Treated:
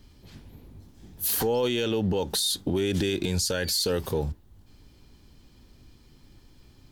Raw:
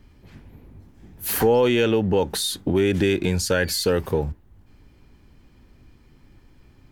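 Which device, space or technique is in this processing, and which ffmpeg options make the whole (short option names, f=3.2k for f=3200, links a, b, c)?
over-bright horn tweeter: -af "highshelf=f=2.9k:t=q:w=1.5:g=7,alimiter=limit=-15dB:level=0:latency=1:release=60,volume=-2dB"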